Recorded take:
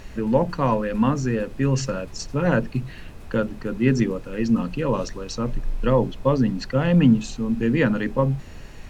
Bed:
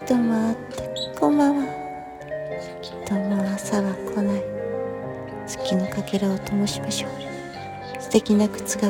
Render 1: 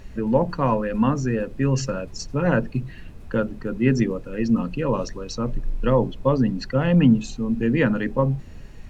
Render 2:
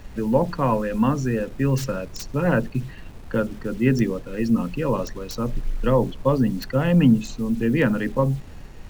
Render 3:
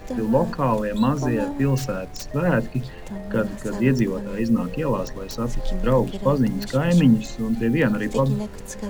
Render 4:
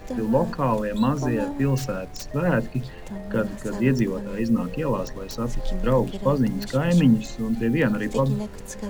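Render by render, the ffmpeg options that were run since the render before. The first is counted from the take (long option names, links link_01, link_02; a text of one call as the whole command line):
ffmpeg -i in.wav -af "afftdn=noise_reduction=7:noise_floor=-40" out.wav
ffmpeg -i in.wav -filter_complex "[0:a]acrossover=split=330|2800[link_01][link_02][link_03];[link_01]acrusher=bits=7:mix=0:aa=0.000001[link_04];[link_03]aeval=exprs='(mod(23.7*val(0)+1,2)-1)/23.7':channel_layout=same[link_05];[link_04][link_02][link_05]amix=inputs=3:normalize=0" out.wav
ffmpeg -i in.wav -i bed.wav -filter_complex "[1:a]volume=-10dB[link_01];[0:a][link_01]amix=inputs=2:normalize=0" out.wav
ffmpeg -i in.wav -af "volume=-1.5dB" out.wav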